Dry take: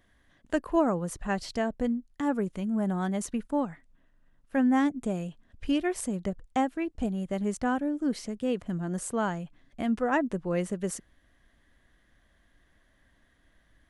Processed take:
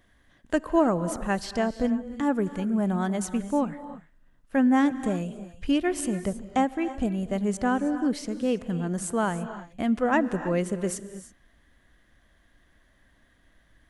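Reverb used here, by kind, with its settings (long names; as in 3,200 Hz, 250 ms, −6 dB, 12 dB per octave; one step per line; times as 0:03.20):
reverb whose tail is shaped and stops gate 350 ms rising, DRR 12 dB
level +3 dB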